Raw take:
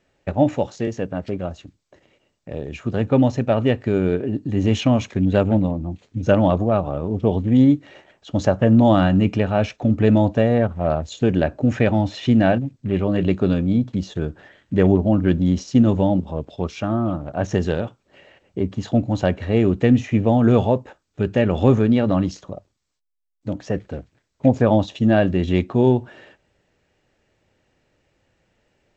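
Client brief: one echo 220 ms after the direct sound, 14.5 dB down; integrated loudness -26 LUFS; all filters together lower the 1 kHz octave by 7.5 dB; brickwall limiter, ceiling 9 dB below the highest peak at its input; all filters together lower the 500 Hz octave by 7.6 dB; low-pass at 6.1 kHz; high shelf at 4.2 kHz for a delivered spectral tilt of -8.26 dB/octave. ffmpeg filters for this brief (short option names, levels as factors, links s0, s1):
-af "lowpass=6100,equalizer=f=500:t=o:g=-8,equalizer=f=1000:t=o:g=-6.5,highshelf=f=4200:g=-6.5,alimiter=limit=0.178:level=0:latency=1,aecho=1:1:220:0.188"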